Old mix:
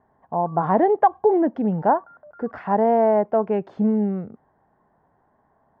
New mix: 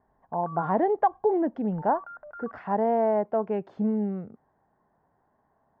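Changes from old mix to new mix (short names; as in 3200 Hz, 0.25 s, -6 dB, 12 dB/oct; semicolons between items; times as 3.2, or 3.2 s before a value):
speech -6.0 dB; background: remove band-pass 420 Hz, Q 0.61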